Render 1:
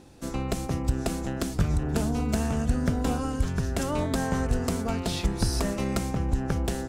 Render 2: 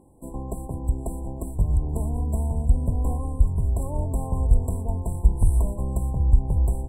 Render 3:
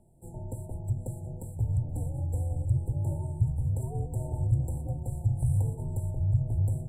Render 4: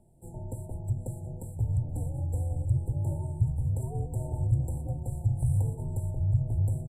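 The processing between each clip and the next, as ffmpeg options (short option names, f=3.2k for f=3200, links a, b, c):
-af "afftfilt=real='re*(1-between(b*sr/4096,1100,7500))':imag='im*(1-between(b*sr/4096,1100,7500))':win_size=4096:overlap=0.75,asubboost=boost=7:cutoff=90,volume=-3.5dB"
-af "acontrast=67,flanger=delay=5.1:depth=9.8:regen=-69:speed=1:shape=sinusoidal,afreqshift=-160,volume=-8.5dB"
-af "aresample=32000,aresample=44100"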